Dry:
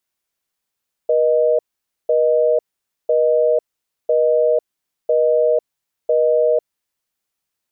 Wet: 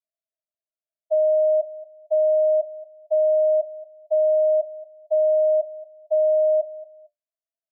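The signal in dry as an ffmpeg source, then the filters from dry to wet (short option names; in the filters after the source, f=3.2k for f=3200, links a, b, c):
-f lavfi -i "aevalsrc='0.178*(sin(2*PI*480*t)+sin(2*PI*620*t))*clip(min(mod(t,1),0.5-mod(t,1))/0.005,0,1)':d=5.84:s=44100"
-af "asuperpass=centerf=640:order=20:qfactor=6.6,aecho=1:1:227|454:0.126|0.0352"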